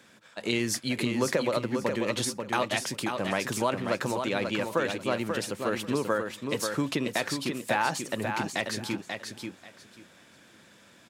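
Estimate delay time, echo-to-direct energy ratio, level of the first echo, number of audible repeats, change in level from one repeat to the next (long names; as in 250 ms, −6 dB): 538 ms, −5.5 dB, −5.5 dB, 3, −14.0 dB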